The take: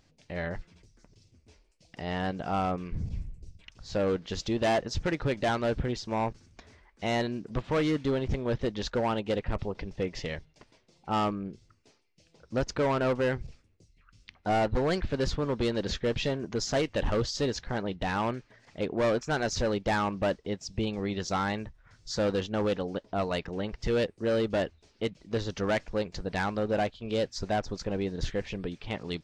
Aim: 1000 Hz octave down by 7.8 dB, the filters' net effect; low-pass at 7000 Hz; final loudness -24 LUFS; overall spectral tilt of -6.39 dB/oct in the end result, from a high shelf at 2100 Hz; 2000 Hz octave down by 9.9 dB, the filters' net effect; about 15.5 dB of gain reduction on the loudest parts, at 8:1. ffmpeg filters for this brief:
-af "lowpass=7k,equalizer=f=1k:t=o:g=-9,equalizer=f=2k:t=o:g=-6,highshelf=f=2.1k:g=-6.5,acompressor=threshold=-42dB:ratio=8,volume=23dB"

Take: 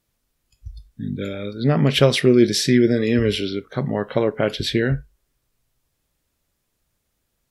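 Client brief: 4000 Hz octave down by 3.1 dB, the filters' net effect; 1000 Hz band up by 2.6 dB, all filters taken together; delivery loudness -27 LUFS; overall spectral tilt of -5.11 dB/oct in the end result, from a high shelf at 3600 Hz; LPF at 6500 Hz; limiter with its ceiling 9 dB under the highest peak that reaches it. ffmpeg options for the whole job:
-af "lowpass=6.5k,equalizer=f=1k:t=o:g=3.5,highshelf=f=3.6k:g=7,equalizer=f=4k:t=o:g=-8.5,volume=-3.5dB,alimiter=limit=-15.5dB:level=0:latency=1"

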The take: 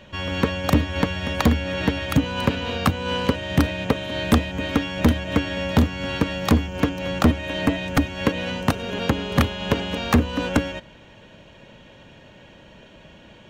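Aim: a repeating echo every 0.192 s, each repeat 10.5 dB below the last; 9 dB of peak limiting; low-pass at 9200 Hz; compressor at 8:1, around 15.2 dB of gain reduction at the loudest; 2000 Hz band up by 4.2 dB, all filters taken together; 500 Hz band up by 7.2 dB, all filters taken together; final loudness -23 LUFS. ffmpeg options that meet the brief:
-af "lowpass=9.2k,equalizer=f=500:t=o:g=8,equalizer=f=2k:t=o:g=5,acompressor=threshold=-27dB:ratio=8,alimiter=limit=-22.5dB:level=0:latency=1,aecho=1:1:192|384|576:0.299|0.0896|0.0269,volume=9.5dB"

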